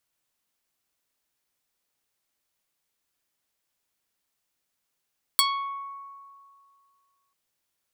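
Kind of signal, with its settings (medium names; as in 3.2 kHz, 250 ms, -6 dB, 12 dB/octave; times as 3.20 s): plucked string C#6, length 1.94 s, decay 2.21 s, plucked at 0.45, medium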